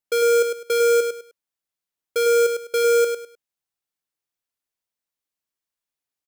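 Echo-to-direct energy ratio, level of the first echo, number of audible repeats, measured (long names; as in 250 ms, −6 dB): −5.5 dB, −6.0 dB, 3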